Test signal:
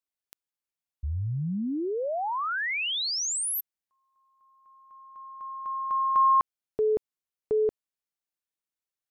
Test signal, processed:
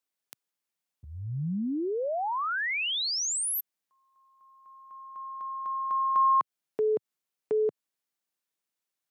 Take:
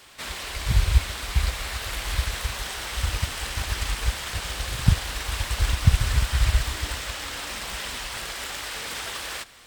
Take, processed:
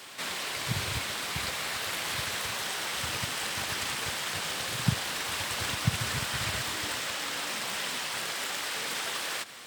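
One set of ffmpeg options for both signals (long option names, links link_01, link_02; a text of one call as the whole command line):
ffmpeg -i in.wav -filter_complex "[0:a]highpass=frequency=130:width=0.5412,highpass=frequency=130:width=1.3066,asplit=2[link_01][link_02];[link_02]acompressor=threshold=-41dB:ratio=6:attack=2.5:release=158:knee=1:detection=peak,volume=2.5dB[link_03];[link_01][link_03]amix=inputs=2:normalize=0,volume=-3dB" out.wav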